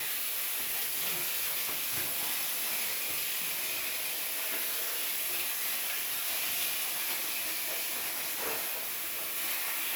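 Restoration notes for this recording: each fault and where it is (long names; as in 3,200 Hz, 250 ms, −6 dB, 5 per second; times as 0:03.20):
0:08.74–0:09.37: clipping −32 dBFS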